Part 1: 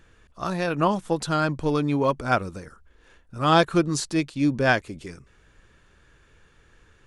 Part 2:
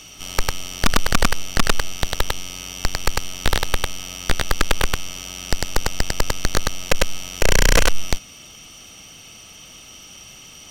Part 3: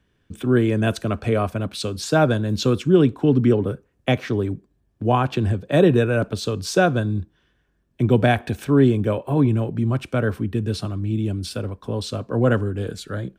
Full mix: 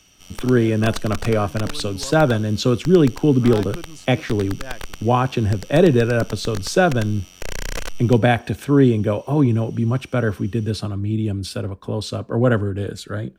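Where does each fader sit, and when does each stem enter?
-15.5, -13.0, +1.5 dB; 0.00, 0.00, 0.00 s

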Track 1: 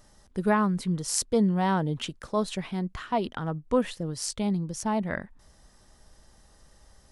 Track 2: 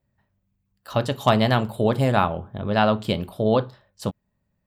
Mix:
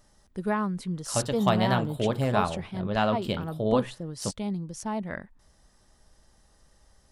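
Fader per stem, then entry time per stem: -4.0, -6.0 dB; 0.00, 0.20 s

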